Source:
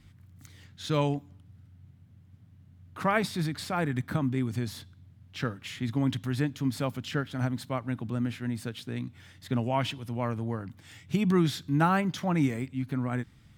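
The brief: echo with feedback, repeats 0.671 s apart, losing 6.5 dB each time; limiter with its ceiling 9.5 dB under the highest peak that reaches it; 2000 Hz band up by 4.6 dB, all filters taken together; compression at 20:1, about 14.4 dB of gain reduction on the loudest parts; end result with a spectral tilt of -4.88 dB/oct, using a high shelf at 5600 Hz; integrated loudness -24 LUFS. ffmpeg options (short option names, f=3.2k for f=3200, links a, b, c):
-af "equalizer=f=2k:t=o:g=5.5,highshelf=f=5.6k:g=4.5,acompressor=threshold=-33dB:ratio=20,alimiter=level_in=7dB:limit=-24dB:level=0:latency=1,volume=-7dB,aecho=1:1:671|1342|2013|2684|3355|4026:0.473|0.222|0.105|0.0491|0.0231|0.0109,volume=16.5dB"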